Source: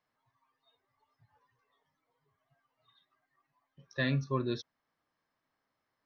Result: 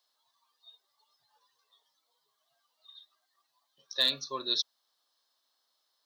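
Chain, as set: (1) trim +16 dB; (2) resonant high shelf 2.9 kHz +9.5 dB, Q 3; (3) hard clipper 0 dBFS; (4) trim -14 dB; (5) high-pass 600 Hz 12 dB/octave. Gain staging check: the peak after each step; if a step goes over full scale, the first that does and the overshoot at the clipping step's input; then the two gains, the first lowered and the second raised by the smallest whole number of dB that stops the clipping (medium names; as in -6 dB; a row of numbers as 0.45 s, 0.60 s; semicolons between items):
-3.0 dBFS, +3.5 dBFS, 0.0 dBFS, -14.0 dBFS, -13.0 dBFS; step 2, 3.5 dB; step 1 +12 dB, step 4 -10 dB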